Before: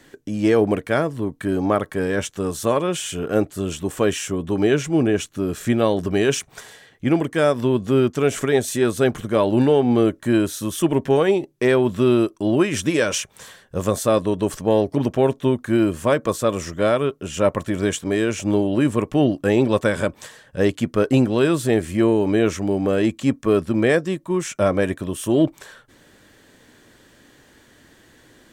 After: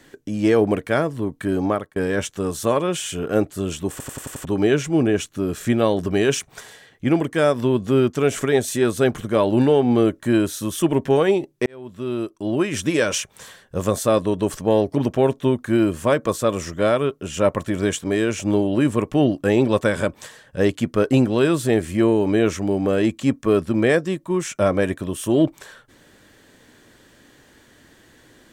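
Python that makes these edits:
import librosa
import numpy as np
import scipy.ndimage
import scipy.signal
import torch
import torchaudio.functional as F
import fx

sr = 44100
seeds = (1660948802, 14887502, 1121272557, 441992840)

y = fx.edit(x, sr, fx.fade_out_span(start_s=1.65, length_s=0.31),
    fx.stutter_over(start_s=3.91, slice_s=0.09, count=6),
    fx.fade_in_span(start_s=11.66, length_s=1.33), tone=tone)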